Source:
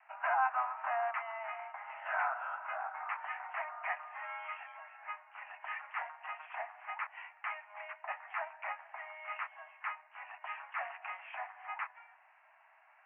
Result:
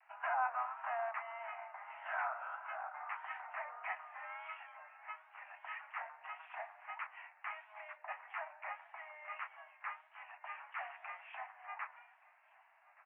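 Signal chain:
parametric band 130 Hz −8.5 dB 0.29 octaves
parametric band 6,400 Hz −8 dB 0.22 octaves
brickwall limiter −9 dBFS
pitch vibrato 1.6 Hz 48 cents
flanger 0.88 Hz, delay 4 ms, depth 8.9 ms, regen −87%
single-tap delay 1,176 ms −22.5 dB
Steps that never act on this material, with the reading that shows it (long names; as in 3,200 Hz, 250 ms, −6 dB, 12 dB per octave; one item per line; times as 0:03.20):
parametric band 130 Hz: nothing at its input below 540 Hz
parametric band 6,400 Hz: nothing at its input above 3,000 Hz
brickwall limiter −9 dBFS: peak of its input −19.0 dBFS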